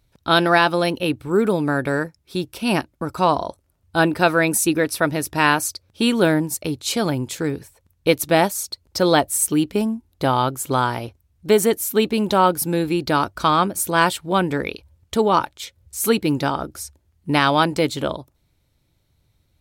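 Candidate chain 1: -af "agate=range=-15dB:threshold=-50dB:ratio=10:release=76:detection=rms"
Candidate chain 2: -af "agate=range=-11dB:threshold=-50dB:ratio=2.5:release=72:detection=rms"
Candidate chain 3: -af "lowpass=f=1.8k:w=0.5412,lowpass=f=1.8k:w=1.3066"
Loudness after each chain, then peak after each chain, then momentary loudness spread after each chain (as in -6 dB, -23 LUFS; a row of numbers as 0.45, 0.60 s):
-20.0, -20.0, -21.0 LUFS; -2.5, -2.5, -3.5 dBFS; 11, 11, 10 LU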